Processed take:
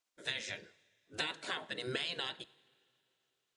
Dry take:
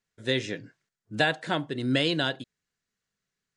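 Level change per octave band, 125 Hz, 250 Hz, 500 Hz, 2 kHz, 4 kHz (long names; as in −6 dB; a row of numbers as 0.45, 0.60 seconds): −19.0, −20.5, −14.5, −10.5, −8.0 decibels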